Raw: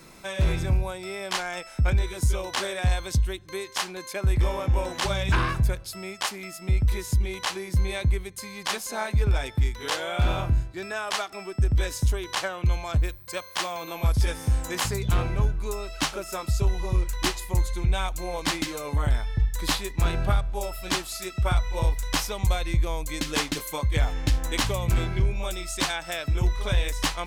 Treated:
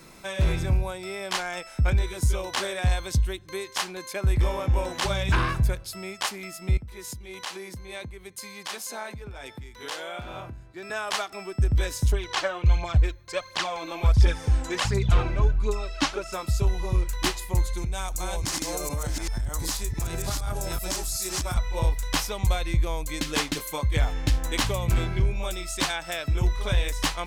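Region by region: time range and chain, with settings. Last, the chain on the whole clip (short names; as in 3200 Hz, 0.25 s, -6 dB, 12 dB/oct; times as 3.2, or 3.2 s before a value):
6.77–10.9 compressor 2.5:1, threshold -33 dBFS + HPF 200 Hz 6 dB/oct + three-band expander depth 40%
12.12–16.34 LPF 6400 Hz + phaser 1.4 Hz, delay 3.7 ms
17.77–21.57 reverse delay 0.377 s, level -1.5 dB + resonant high shelf 4500 Hz +8 dB, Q 1.5 + compressor, threshold -25 dBFS
whole clip: dry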